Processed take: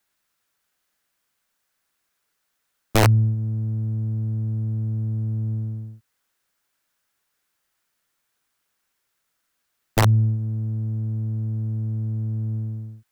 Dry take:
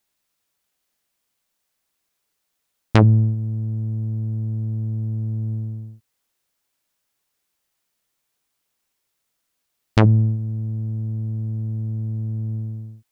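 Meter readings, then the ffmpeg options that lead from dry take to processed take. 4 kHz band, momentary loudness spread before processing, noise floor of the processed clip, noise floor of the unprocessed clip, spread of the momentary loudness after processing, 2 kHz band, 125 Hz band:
+4.0 dB, 13 LU, -76 dBFS, -76 dBFS, 10 LU, +2.0 dB, -1.5 dB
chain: -filter_complex "[0:a]equalizer=f=1500:w=1.7:g=7,acrossover=split=140|3000[s0][s1][s2];[s1]acompressor=threshold=0.0282:ratio=2.5[s3];[s0][s3][s2]amix=inputs=3:normalize=0,aeval=exprs='(mod(3.35*val(0)+1,2)-1)/3.35':c=same"

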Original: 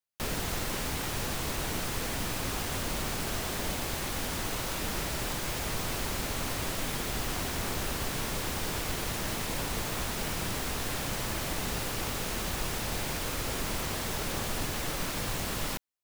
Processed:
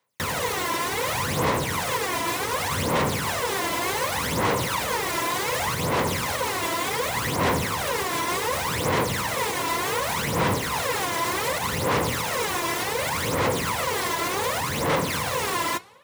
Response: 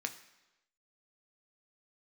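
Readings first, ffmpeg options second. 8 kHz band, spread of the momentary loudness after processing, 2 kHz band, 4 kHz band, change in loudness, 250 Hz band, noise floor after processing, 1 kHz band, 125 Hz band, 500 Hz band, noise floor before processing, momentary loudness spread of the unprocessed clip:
+5.5 dB, 2 LU, +9.5 dB, +6.0 dB, +8.0 dB, +6.5 dB, -28 dBFS, +12.5 dB, +5.5 dB, +11.0 dB, -35 dBFS, 0 LU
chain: -filter_complex "[0:a]equalizer=f=500:t=o:w=0.33:g=9,equalizer=f=1000:t=o:w=0.33:g=10,equalizer=f=2000:t=o:w=0.33:g=6,equalizer=f=16000:t=o:w=0.33:g=-3,alimiter=level_in=1.5:limit=0.0631:level=0:latency=1:release=224,volume=0.668,highpass=f=84:w=0.5412,highpass=f=84:w=1.3066,asplit=2[s0][s1];[1:a]atrim=start_sample=2205,asetrate=26460,aresample=44100[s2];[s1][s2]afir=irnorm=-1:irlink=0,volume=0.211[s3];[s0][s3]amix=inputs=2:normalize=0,aphaser=in_gain=1:out_gain=1:delay=3:decay=0.68:speed=0.67:type=sinusoidal,asoftclip=type=tanh:threshold=0.0668,volume=2.66"

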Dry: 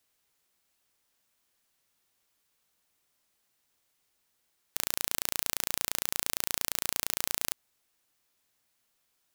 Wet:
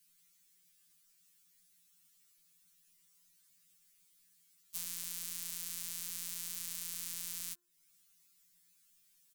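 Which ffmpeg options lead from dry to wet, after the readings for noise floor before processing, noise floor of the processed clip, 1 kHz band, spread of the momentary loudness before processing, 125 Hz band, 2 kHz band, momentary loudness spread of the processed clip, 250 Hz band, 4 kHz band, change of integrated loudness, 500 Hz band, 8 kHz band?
-76 dBFS, -70 dBFS, -20.5 dB, 5 LU, -9.5 dB, -15.0 dB, 3 LU, -12.0 dB, -11.0 dB, -8.5 dB, under -20 dB, -7.0 dB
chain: -filter_complex "[0:a]acrossover=split=460|1100[s0][s1][s2];[s1]acrusher=bits=4:mix=0:aa=0.000001[s3];[s0][s3][s2]amix=inputs=3:normalize=0,firequalizer=gain_entry='entry(190,0);entry(690,-21);entry(980,-6);entry(7600,3)':delay=0.05:min_phase=1,acompressor=threshold=0.00794:ratio=3,bandreject=f=69.67:t=h:w=4,bandreject=f=139.34:t=h:w=4,bandreject=f=209.01:t=h:w=4,bandreject=f=278.68:t=h:w=4,bandreject=f=348.35:t=h:w=4,bandreject=f=418.02:t=h:w=4,bandreject=f=487.69:t=h:w=4,bandreject=f=557.36:t=h:w=4,bandreject=f=627.03:t=h:w=4,bandreject=f=696.7:t=h:w=4,bandreject=f=766.37:t=h:w=4,bandreject=f=836.04:t=h:w=4,bandreject=f=905.71:t=h:w=4,bandreject=f=975.38:t=h:w=4,bandreject=f=1045.05:t=h:w=4,bandreject=f=1114.72:t=h:w=4,bandreject=f=1184.39:t=h:w=4,bandreject=f=1254.06:t=h:w=4,bandreject=f=1323.73:t=h:w=4,bandreject=f=1393.4:t=h:w=4,bandreject=f=1463.07:t=h:w=4,bandreject=f=1532.74:t=h:w=4,bandreject=f=1602.41:t=h:w=4,bandreject=f=1672.08:t=h:w=4,bandreject=f=1741.75:t=h:w=4,bandreject=f=1811.42:t=h:w=4,afftfilt=real='re*2.83*eq(mod(b,8),0)':imag='im*2.83*eq(mod(b,8),0)':win_size=2048:overlap=0.75,volume=2.11"

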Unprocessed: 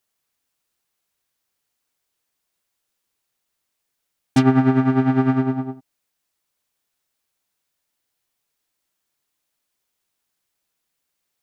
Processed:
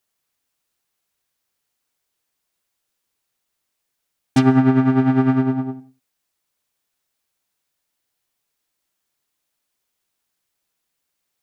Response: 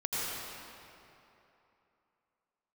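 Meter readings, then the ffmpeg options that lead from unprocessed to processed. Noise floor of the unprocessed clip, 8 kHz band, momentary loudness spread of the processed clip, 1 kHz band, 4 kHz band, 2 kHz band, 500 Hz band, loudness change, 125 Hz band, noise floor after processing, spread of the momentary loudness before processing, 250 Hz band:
-78 dBFS, no reading, 9 LU, 0.0 dB, +0.5 dB, +0.5 dB, +0.5 dB, +1.5 dB, +1.0 dB, -77 dBFS, 10 LU, +1.5 dB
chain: -filter_complex "[0:a]asplit=2[s0][s1];[1:a]atrim=start_sample=2205,afade=t=out:st=0.39:d=0.01,atrim=end_sample=17640,asetrate=74970,aresample=44100[s2];[s1][s2]afir=irnorm=-1:irlink=0,volume=0.1[s3];[s0][s3]amix=inputs=2:normalize=0"

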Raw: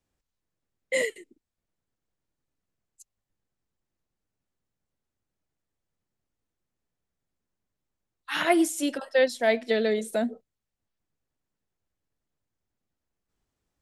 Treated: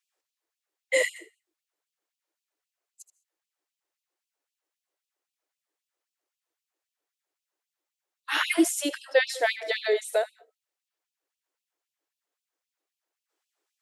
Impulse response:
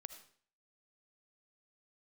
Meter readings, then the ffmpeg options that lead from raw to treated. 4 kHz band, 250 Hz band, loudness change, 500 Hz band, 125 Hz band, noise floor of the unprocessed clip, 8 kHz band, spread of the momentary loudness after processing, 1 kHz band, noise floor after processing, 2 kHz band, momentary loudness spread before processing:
+3.0 dB, -2.5 dB, -0.5 dB, -1.5 dB, no reading, under -85 dBFS, +3.0 dB, 7 LU, -2.0 dB, under -85 dBFS, +2.5 dB, 8 LU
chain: -filter_complex "[0:a]asplit=2[s0][s1];[1:a]atrim=start_sample=2205,atrim=end_sample=6174,adelay=77[s2];[s1][s2]afir=irnorm=-1:irlink=0,volume=0.376[s3];[s0][s3]amix=inputs=2:normalize=0,afftfilt=real='re*gte(b*sr/1024,260*pow(2500/260,0.5+0.5*sin(2*PI*3.8*pts/sr)))':imag='im*gte(b*sr/1024,260*pow(2500/260,0.5+0.5*sin(2*PI*3.8*pts/sr)))':win_size=1024:overlap=0.75,volume=1.41"

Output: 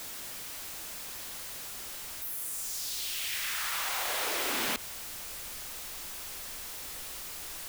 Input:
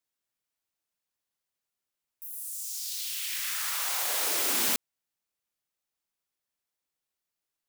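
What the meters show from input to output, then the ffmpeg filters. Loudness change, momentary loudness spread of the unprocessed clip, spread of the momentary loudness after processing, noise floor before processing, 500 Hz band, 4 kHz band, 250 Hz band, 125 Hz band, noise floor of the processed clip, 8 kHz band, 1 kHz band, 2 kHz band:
-6.0 dB, 11 LU, 9 LU, under -85 dBFS, +1.5 dB, 0.0 dB, +0.5 dB, no reading, -42 dBFS, -2.5 dB, +2.0 dB, +2.0 dB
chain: -filter_complex "[0:a]aeval=exprs='val(0)+0.5*0.02*sgn(val(0))':c=same,acrossover=split=3800[s0][s1];[s1]acompressor=threshold=0.0224:ratio=4:attack=1:release=60[s2];[s0][s2]amix=inputs=2:normalize=0,asubboost=boost=3:cutoff=82"

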